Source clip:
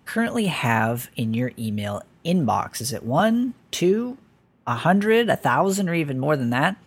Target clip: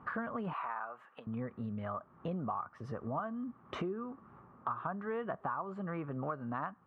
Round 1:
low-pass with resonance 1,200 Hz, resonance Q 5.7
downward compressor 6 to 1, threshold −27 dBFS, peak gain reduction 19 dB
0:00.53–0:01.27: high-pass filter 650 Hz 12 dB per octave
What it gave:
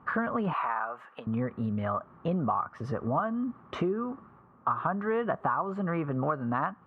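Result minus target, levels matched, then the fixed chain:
downward compressor: peak gain reduction −9 dB
low-pass with resonance 1,200 Hz, resonance Q 5.7
downward compressor 6 to 1, threshold −37.5 dBFS, peak gain reduction 27.5 dB
0:00.53–0:01.27: high-pass filter 650 Hz 12 dB per octave

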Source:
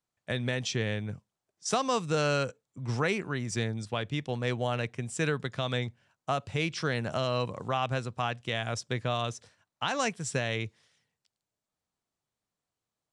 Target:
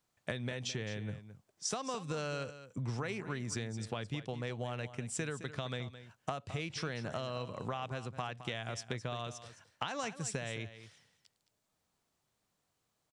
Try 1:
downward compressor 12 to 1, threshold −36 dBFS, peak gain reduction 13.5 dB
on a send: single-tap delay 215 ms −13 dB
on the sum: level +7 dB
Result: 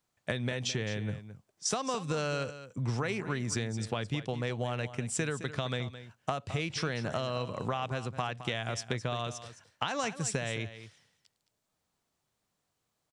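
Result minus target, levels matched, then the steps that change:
downward compressor: peak gain reduction −5.5 dB
change: downward compressor 12 to 1, threshold −42 dBFS, peak gain reduction 19 dB

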